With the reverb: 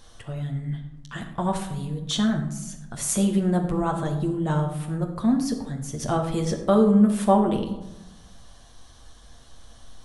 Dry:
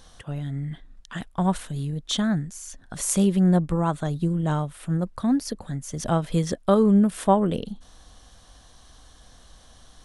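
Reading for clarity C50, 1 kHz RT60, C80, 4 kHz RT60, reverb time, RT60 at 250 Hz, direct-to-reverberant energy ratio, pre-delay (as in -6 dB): 8.0 dB, 1.0 s, 10.0 dB, 0.45 s, 1.0 s, 1.2 s, 1.5 dB, 9 ms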